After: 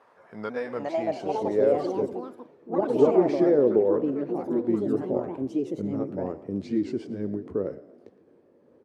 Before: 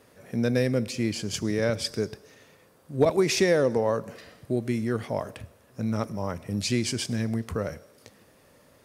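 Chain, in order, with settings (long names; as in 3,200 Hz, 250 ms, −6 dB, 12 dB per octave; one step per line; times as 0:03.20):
pitch shifter swept by a sawtooth −2 semitones, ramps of 495 ms
on a send: echo with shifted repeats 114 ms, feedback 43%, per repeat +48 Hz, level −18 dB
on the sum: delay with pitch and tempo change per echo 521 ms, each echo +5 semitones, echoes 3
band-pass filter sweep 980 Hz → 350 Hz, 0:00.79–0:02.03
level +8 dB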